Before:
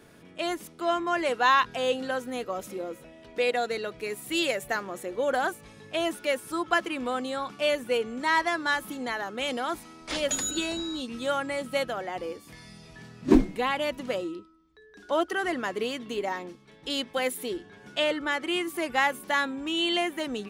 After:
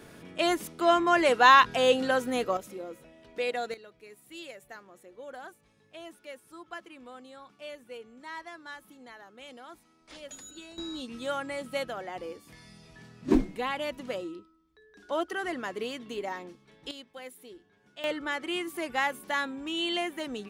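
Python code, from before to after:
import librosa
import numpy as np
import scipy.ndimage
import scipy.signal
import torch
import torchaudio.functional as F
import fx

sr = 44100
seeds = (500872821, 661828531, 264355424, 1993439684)

y = fx.gain(x, sr, db=fx.steps((0.0, 4.0), (2.57, -5.0), (3.74, -17.0), (10.78, -4.5), (16.91, -16.0), (18.04, -4.0)))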